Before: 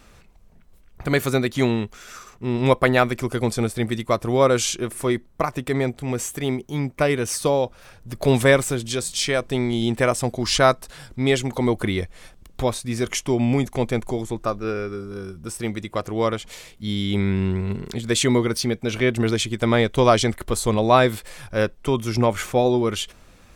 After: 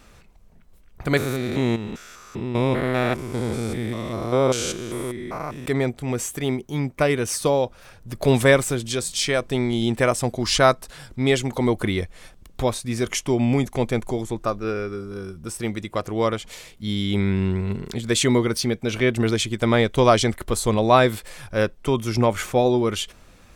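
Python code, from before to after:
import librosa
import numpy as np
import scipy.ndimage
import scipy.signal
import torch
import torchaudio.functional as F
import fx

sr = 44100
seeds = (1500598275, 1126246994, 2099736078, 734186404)

y = fx.spec_steps(x, sr, hold_ms=200, at=(1.17, 5.66))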